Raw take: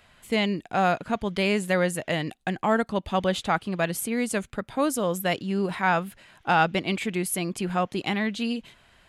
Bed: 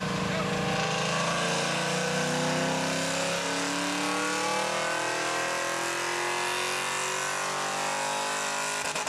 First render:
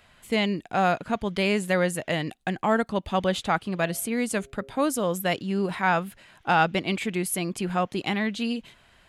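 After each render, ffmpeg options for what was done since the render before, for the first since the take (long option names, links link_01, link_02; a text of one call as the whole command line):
ffmpeg -i in.wav -filter_complex "[0:a]asettb=1/sr,asplit=3[link_01][link_02][link_03];[link_01]atrim=end=3.684[link_04];[link_02]atrim=start=3.68:end=4.72,asetpts=PTS-STARTPTS,afade=type=in:duration=0.004:curve=qsin,afade=type=out:start_time=1.036:duration=0.004:curve=qsin,bandreject=frequency=135.5:width_type=h:width=4,bandreject=frequency=271:width_type=h:width=4,bandreject=frequency=406.5:width_type=h:width=4,bandreject=frequency=542:width_type=h:width=4,bandreject=frequency=677.5:width_type=h:width=4[link_05];[link_03]atrim=start=4.716[link_06];[link_04][link_05]acrossfade=duration=0.004:curve1=hsin:curve2=qsin[link_07];[link_07][link_06]acrossfade=duration=0.004:curve1=qsin:curve2=hsin" out.wav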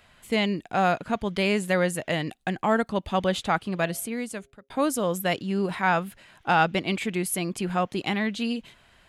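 ffmpeg -i in.wav -filter_complex "[0:a]asplit=2[link_01][link_02];[link_01]atrim=end=4.7,asetpts=PTS-STARTPTS,afade=type=out:start_time=3.82:duration=0.88[link_03];[link_02]atrim=start=4.7,asetpts=PTS-STARTPTS,afade=type=in:duration=0.004:curve=hsin[link_04];[link_03][link_04]concat=n=2:v=0:a=1" out.wav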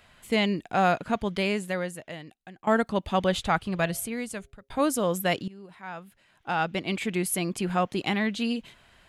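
ffmpeg -i in.wav -filter_complex "[0:a]asplit=3[link_01][link_02][link_03];[link_01]afade=type=out:start_time=3.31:duration=0.02[link_04];[link_02]asubboost=boost=4:cutoff=120,afade=type=in:start_time=3.31:duration=0.02,afade=type=out:start_time=4.79:duration=0.02[link_05];[link_03]afade=type=in:start_time=4.79:duration=0.02[link_06];[link_04][link_05][link_06]amix=inputs=3:normalize=0,asplit=3[link_07][link_08][link_09];[link_07]atrim=end=2.67,asetpts=PTS-STARTPTS,afade=type=out:start_time=1.22:duration=1.45:curve=qua:silence=0.11885[link_10];[link_08]atrim=start=2.67:end=5.48,asetpts=PTS-STARTPTS,afade=type=in:duration=0.004:curve=hsin:silence=0.11885,afade=type=out:start_time=2.806:duration=0.004:curve=hsin:silence=0.0944061[link_11];[link_09]atrim=start=5.48,asetpts=PTS-STARTPTS,afade=type=in:duration=1.67:curve=qua:silence=0.0944061[link_12];[link_10][link_11][link_12]concat=n=3:v=0:a=1" out.wav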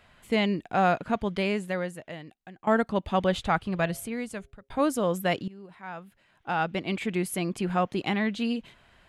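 ffmpeg -i in.wav -af "highshelf=frequency=3900:gain=-7.5" out.wav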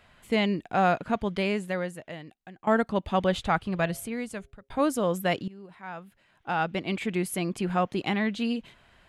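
ffmpeg -i in.wav -af anull out.wav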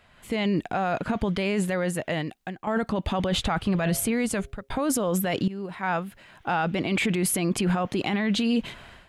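ffmpeg -i in.wav -af "dynaudnorm=framelen=110:gausssize=5:maxgain=14dB,alimiter=limit=-16.5dB:level=0:latency=1:release=14" out.wav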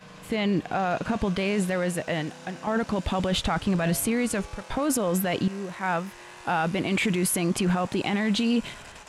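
ffmpeg -i in.wav -i bed.wav -filter_complex "[1:a]volume=-17dB[link_01];[0:a][link_01]amix=inputs=2:normalize=0" out.wav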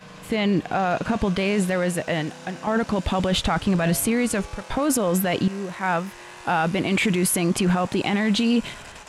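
ffmpeg -i in.wav -af "volume=3.5dB" out.wav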